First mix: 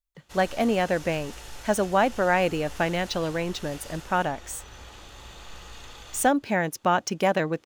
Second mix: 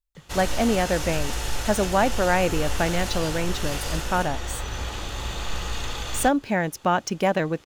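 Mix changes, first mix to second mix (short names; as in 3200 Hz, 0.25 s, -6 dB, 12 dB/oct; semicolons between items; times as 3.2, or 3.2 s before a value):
background +12.0 dB; master: add low shelf 240 Hz +4 dB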